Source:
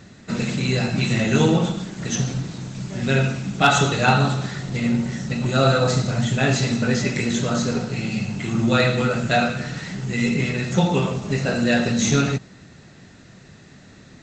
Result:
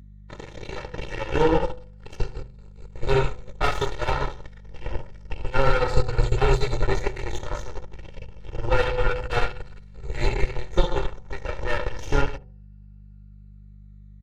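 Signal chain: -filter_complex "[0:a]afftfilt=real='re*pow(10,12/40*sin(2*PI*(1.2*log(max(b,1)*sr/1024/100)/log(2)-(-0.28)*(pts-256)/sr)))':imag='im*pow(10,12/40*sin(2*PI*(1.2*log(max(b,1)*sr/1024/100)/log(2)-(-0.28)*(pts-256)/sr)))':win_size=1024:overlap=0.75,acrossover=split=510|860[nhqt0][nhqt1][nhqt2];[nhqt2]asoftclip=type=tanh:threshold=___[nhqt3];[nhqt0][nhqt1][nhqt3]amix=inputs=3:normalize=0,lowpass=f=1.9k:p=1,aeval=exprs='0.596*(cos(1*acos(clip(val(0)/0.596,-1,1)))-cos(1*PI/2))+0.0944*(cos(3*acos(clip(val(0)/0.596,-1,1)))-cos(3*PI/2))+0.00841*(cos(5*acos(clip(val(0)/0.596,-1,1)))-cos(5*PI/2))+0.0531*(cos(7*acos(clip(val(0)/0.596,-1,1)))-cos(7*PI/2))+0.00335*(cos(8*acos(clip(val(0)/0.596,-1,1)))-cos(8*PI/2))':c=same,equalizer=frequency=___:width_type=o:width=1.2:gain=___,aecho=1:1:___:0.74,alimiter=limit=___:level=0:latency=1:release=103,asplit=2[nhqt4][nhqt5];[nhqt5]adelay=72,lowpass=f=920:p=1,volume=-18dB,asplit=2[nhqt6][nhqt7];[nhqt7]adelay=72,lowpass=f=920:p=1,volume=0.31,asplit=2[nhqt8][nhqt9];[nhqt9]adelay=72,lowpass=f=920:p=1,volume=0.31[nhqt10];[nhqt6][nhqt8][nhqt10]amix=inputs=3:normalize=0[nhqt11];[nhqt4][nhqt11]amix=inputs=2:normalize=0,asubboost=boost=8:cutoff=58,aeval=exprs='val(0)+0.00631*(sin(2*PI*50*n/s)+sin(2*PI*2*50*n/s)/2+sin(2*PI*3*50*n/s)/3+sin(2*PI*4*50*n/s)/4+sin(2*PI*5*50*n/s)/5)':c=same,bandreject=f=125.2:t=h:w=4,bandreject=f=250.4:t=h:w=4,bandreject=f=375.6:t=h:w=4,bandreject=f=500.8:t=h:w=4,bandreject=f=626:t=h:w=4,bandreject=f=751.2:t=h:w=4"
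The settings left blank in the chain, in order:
-21.5dB, 190, -4, 2.2, -8.5dB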